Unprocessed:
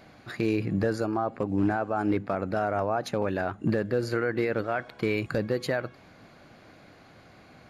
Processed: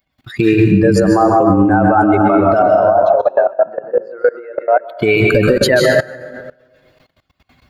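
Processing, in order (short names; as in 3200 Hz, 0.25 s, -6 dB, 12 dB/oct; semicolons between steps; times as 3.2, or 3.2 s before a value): per-bin expansion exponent 2; compressor 4:1, threshold -30 dBFS, peak gain reduction 6.5 dB; 2.62–4.88 ladder band-pass 690 Hz, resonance 60%; plate-style reverb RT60 1.3 s, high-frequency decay 0.6×, pre-delay 0.12 s, DRR 3 dB; level quantiser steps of 21 dB; tremolo 8 Hz, depth 42%; maximiser +35.5 dB; gain -1 dB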